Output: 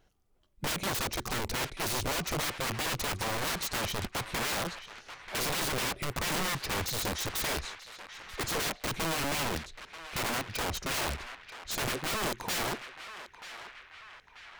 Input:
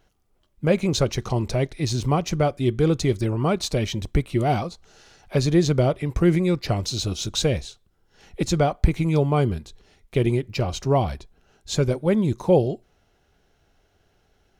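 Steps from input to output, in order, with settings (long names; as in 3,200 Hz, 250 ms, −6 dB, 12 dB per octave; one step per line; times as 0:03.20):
wrap-around overflow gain 22.5 dB
feedback echo with a band-pass in the loop 936 ms, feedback 62%, band-pass 1,900 Hz, level −9.5 dB
level −4.5 dB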